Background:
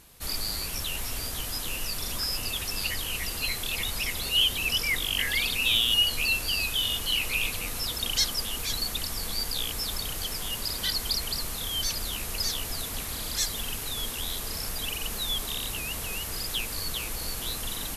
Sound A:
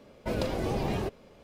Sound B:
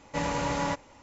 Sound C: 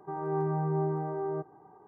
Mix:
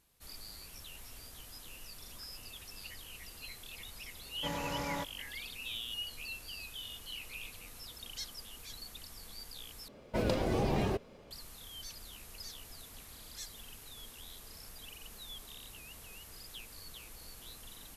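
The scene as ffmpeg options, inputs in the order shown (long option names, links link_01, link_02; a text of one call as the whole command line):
ffmpeg -i bed.wav -i cue0.wav -i cue1.wav -filter_complex "[0:a]volume=-17.5dB,asplit=2[link_01][link_02];[link_01]atrim=end=9.884[link_03];[1:a]atrim=end=1.43,asetpts=PTS-STARTPTS,volume=-1dB[link_04];[link_02]atrim=start=11.306[link_05];[2:a]atrim=end=1.02,asetpts=PTS-STARTPTS,volume=-8.5dB,afade=type=in:duration=0.004:curve=hsin,afade=type=out:start_time=1.016:duration=0.004:curve=hsin,adelay=189189S[link_06];[link_03][link_04]acrossfade=duration=0.004:curve1=hsin:curve2=hsin[link_07];[link_07][link_05]acrossfade=duration=0.004:curve1=hsin:curve2=hsin[link_08];[link_08][link_06]amix=inputs=2:normalize=0" out.wav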